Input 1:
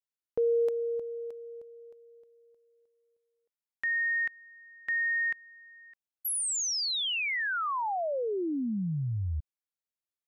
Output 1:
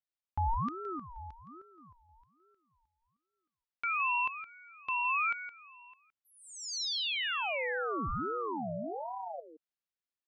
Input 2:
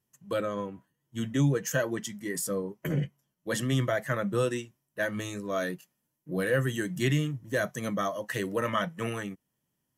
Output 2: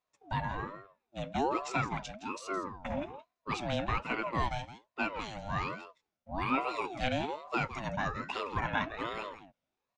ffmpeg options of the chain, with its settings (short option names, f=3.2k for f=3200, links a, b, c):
-af "lowpass=f=5.2k:w=0.5412,lowpass=f=5.2k:w=1.3066,lowshelf=f=170:g=-9,aecho=1:1:166:0.251,aeval=exprs='val(0)*sin(2*PI*630*n/s+630*0.4/1.2*sin(2*PI*1.2*n/s))':c=same"